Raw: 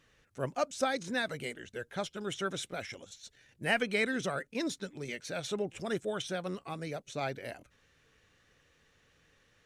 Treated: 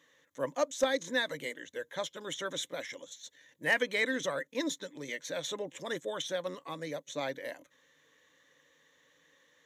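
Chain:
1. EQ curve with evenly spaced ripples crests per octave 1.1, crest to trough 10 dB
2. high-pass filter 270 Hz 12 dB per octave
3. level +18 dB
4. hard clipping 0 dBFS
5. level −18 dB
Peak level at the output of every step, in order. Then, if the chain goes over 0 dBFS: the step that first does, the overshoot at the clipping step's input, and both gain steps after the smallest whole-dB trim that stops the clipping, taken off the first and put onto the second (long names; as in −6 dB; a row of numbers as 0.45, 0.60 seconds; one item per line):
−13.0, −13.5, +4.5, 0.0, −18.0 dBFS
step 3, 4.5 dB
step 3 +13 dB, step 5 −13 dB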